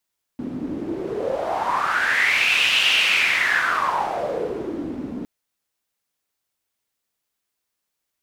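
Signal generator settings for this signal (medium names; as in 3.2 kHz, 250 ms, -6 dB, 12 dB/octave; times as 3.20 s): wind-like swept noise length 4.86 s, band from 250 Hz, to 2.8 kHz, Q 6.2, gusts 1, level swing 11 dB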